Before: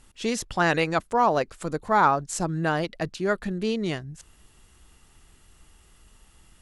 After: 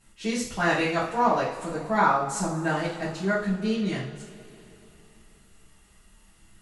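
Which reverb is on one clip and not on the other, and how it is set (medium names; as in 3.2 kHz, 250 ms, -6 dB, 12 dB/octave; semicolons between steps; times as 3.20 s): two-slope reverb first 0.45 s, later 3.5 s, from -20 dB, DRR -9.5 dB; trim -10.5 dB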